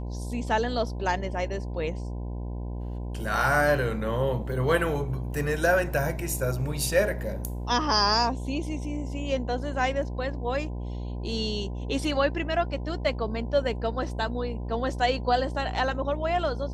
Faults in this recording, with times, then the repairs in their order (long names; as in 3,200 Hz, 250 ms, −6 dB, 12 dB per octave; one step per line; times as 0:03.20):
mains buzz 60 Hz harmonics 17 −33 dBFS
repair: hum removal 60 Hz, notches 17